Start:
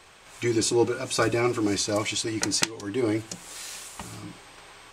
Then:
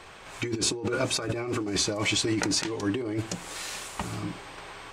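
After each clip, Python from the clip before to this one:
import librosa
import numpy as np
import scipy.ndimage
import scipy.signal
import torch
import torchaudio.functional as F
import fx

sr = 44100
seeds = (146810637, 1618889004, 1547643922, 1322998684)

y = fx.high_shelf(x, sr, hz=4200.0, db=-9.0)
y = fx.over_compress(y, sr, threshold_db=-31.0, ratio=-1.0)
y = F.gain(torch.from_numpy(y), 2.5).numpy()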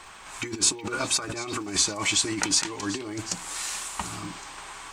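y = fx.graphic_eq(x, sr, hz=(125, 500, 1000, 8000), db=(-7, -8, 5, 8))
y = fx.echo_stepped(y, sr, ms=371, hz=3100.0, octaves=0.7, feedback_pct=70, wet_db=-11.5)
y = fx.dmg_crackle(y, sr, seeds[0], per_s=140.0, level_db=-47.0)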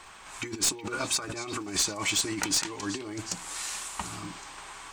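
y = np.minimum(x, 2.0 * 10.0 ** (-16.0 / 20.0) - x)
y = F.gain(torch.from_numpy(y), -3.0).numpy()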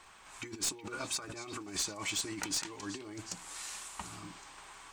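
y = fx.dmg_crackle(x, sr, seeds[1], per_s=170.0, level_db=-50.0)
y = F.gain(torch.from_numpy(y), -8.0).numpy()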